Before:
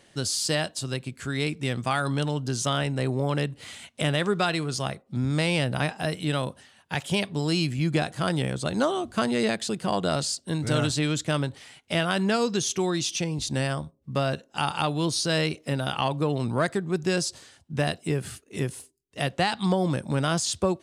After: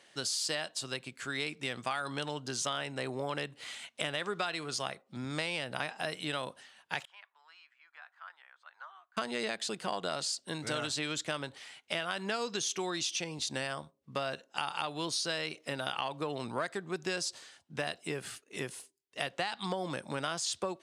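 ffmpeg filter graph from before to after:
-filter_complex "[0:a]asettb=1/sr,asplit=3[a][b][c];[a]atrim=end=7.054[d];[b]atrim=start=7.05:end=9.17,asetpts=PTS-STARTPTS,afade=t=in:d=0.004:c=qsin,afade=t=out:st=2.116:d=0.004:c=qsin,asuperpass=centerf=1200:order=4:qfactor=1.4,aderivative[e];[c]atrim=start=9.166[f];[d][e]acrossfade=d=0.004:c1=hsin:c2=qsin[g];[g][f]acrossfade=d=0.004:c1=qsin:c2=hsin,highpass=f=840:p=1,highshelf=f=8k:g=-8.5,acompressor=threshold=-30dB:ratio=6"

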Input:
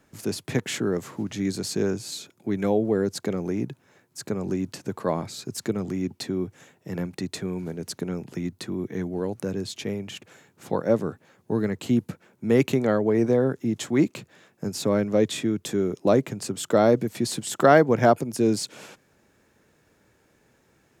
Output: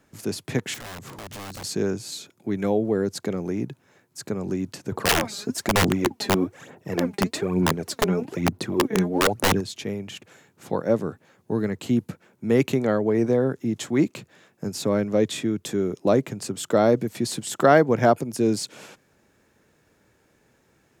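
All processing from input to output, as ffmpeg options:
-filter_complex "[0:a]asettb=1/sr,asplit=3[a][b][c];[a]atrim=end=0.744[d];[b]atrim=start=0.74:end=1.64,asetpts=PTS-STARTPTS,afade=t=in:d=0.004:c=qsin,afade=t=out:st=0.896:d=0.004:c=qsin,lowshelf=f=250:g=11,acompressor=threshold=-34dB:ratio=4:attack=3.2:release=140:knee=1:detection=peak,aeval=exprs='(mod(39.8*val(0)+1,2)-1)/39.8':c=same[e];[c]atrim=start=1.636[f];[d][e]acrossfade=d=0.004:c1=hsin:c2=qsin[g];[g][f]acrossfade=d=0.004:c1=qsin:c2=hsin,asettb=1/sr,asplit=3[h][i][j];[h]atrim=end=4.924[k];[i]atrim=start=4.92:end=9.61,asetpts=PTS-STARTPTS,afade=t=in:d=0.004:c=qsin,afade=t=out:st=4.686:d=0.004:c=qsin,equalizer=f=640:w=0.35:g=7.5,aphaser=in_gain=1:out_gain=1:delay=5:decay=0.65:speed=1.1:type=sinusoidal,aeval=exprs='(mod(4.22*val(0)+1,2)-1)/4.22':c=same[l];[j]atrim=start=9.606[m];[k][l]acrossfade=d=0.004:c1=hsin:c2=qsin[n];[n][m]acrossfade=d=0.004:c1=qsin:c2=hsin"

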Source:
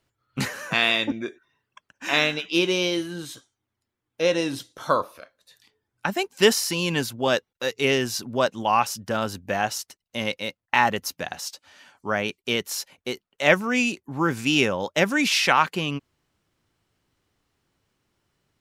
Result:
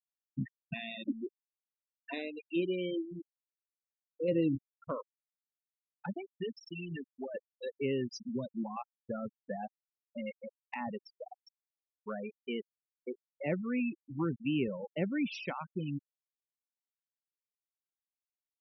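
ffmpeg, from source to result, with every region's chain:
-filter_complex "[0:a]asettb=1/sr,asplit=3[a][b][c];[a]atrim=end=4.284[d];[b]atrim=start=4.28:end=4.89,asetpts=PTS-STARTPTS,afade=t=in:d=0.004:c=qsin,afade=t=out:st=0.606:d=0.004:c=qsin,lowshelf=f=70:g=11,acontrast=47[e];[c]atrim=start=4.886[f];[d][e]acrossfade=d=0.004:c1=hsin:c2=qsin[g];[g][f]acrossfade=d=0.004:c1=qsin:c2=hsin,asettb=1/sr,asplit=3[h][i][j];[h]atrim=end=6.164[k];[i]atrim=start=6.16:end=7.35,asetpts=PTS-STARTPTS,afade=t=in:d=0.004:c=qsin,afade=t=out:st=1.186:d=0.004:c=qsin,highshelf=f=2.4k:g=4.5,acompressor=threshold=-26dB:ratio=3:attack=3.2:release=140:knee=1:detection=peak[l];[j]atrim=start=7.346[m];[k][l]acrossfade=d=0.004:c1=hsin:c2=qsin[n];[n][m]acrossfade=d=0.004:c1=qsin:c2=hsin,asettb=1/sr,asplit=3[o][p][q];[o]atrim=end=8.114[r];[p]atrim=start=8.11:end=8.77,asetpts=PTS-STARTPTS,afade=t=in:d=0.004:c=qsin,afade=t=out:st=0.656:d=0.004:c=qsin,acrossover=split=200|3000[s][t][u];[t]acompressor=threshold=-28dB:ratio=3:attack=3.2:release=140:knee=2.83:detection=peak[v];[s][v][u]amix=inputs=3:normalize=0,highpass=f=150:w=0.5412,highpass=f=150:w=1.3066,bass=f=250:g=10,treble=f=4k:g=6[w];[q]atrim=start=8.766[x];[r][w]acrossfade=d=0.004:c1=hsin:c2=qsin[y];[y][x]acrossfade=d=0.004:c1=qsin:c2=hsin,afftfilt=real='re*gte(hypot(re,im),0.178)':imag='im*gte(hypot(re,im),0.178)':win_size=1024:overlap=0.75,bandreject=f=1.6k:w=11,acrossover=split=430[z][aa];[aa]acompressor=threshold=-39dB:ratio=3[ab];[z][ab]amix=inputs=2:normalize=0,volume=-6.5dB"

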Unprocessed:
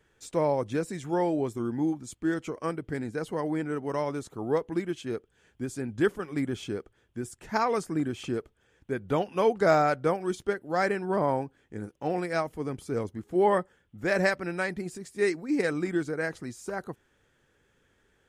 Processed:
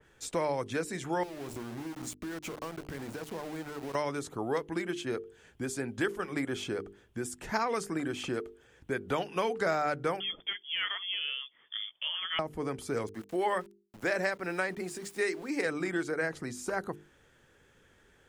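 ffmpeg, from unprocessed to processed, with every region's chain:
-filter_complex "[0:a]asettb=1/sr,asplit=3[a][b][c];[a]atrim=end=1.234[d];[b]atrim=start=1.23:end=3.95,asetpts=PTS-STARTPTS,afade=t=in:d=0.004:c=qsin,afade=t=out:st=2.716:d=0.004:c=qsin,bandreject=f=61.8:t=h:w=4,bandreject=f=123.6:t=h:w=4,bandreject=f=185.4:t=h:w=4,bandreject=f=247.2:t=h:w=4,bandreject=f=309:t=h:w=4,acompressor=threshold=-38dB:ratio=16:attack=3.2:release=140:knee=1:detection=peak,aeval=exprs='val(0)*gte(abs(val(0)),0.00501)':c=same[e];[c]atrim=start=3.946[f];[d][e]acrossfade=d=0.004:c1=hsin:c2=qsin[g];[g][f]acrossfade=d=0.004:c1=qsin:c2=hsin,asettb=1/sr,asplit=3[h][i][j];[h]atrim=end=10.204[k];[i]atrim=start=10.2:end=12.39,asetpts=PTS-STARTPTS,afade=t=in:d=0.004:c=qsin,afade=t=out:st=2.186:d=0.004:c=qsin,highpass=f=190:p=1,lowpass=f=3.1k:t=q:w=0.5098,lowpass=f=3.1k:t=q:w=0.6013,lowpass=f=3.1k:t=q:w=0.9,lowpass=f=3.1k:t=q:w=2.563,afreqshift=-3600[l];[j]atrim=start=12.386[m];[k][l]acrossfade=d=0.004:c1=hsin:c2=qsin[n];[n][m]acrossfade=d=0.004:c1=qsin:c2=hsin,asettb=1/sr,asplit=3[o][p][q];[o]atrim=end=13.084[r];[p]atrim=start=13.08:end=15.66,asetpts=PTS-STARTPTS,afade=t=in:d=0.004:c=qsin,afade=t=out:st=2.576:d=0.004:c=qsin,lowshelf=f=200:g=-11.5,bandreject=f=50:t=h:w=6,bandreject=f=100:t=h:w=6,bandreject=f=150:t=h:w=6,bandreject=f=200:t=h:w=6,aeval=exprs='val(0)*gte(abs(val(0)),0.00251)':c=same[s];[q]atrim=start=15.656[t];[r][s]acrossfade=d=0.004:c1=hsin:c2=qsin[u];[u][t]acrossfade=d=0.004:c1=qsin:c2=hsin,bandreject=f=50:t=h:w=6,bandreject=f=100:t=h:w=6,bandreject=f=150:t=h:w=6,bandreject=f=200:t=h:w=6,bandreject=f=250:t=h:w=6,bandreject=f=300:t=h:w=6,bandreject=f=350:t=h:w=6,bandreject=f=400:t=h:w=6,bandreject=f=450:t=h:w=6,acrossover=split=400|1300[v][w][x];[v]acompressor=threshold=-44dB:ratio=4[y];[w]acompressor=threshold=-39dB:ratio=4[z];[x]acompressor=threshold=-39dB:ratio=4[aa];[y][z][aa]amix=inputs=3:normalize=0,adynamicequalizer=threshold=0.00282:dfrequency=2800:dqfactor=0.7:tfrequency=2800:tqfactor=0.7:attack=5:release=100:ratio=0.375:range=1.5:mode=cutabove:tftype=highshelf,volume=5dB"

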